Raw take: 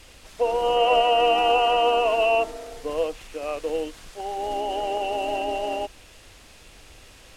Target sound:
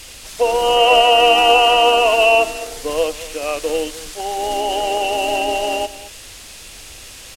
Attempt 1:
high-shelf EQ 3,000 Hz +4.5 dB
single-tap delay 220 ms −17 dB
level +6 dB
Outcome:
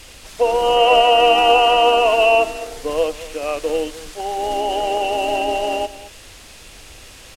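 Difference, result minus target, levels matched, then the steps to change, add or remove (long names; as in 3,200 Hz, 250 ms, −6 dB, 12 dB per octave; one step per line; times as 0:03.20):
8,000 Hz band −5.0 dB
change: high-shelf EQ 3,000 Hz +12 dB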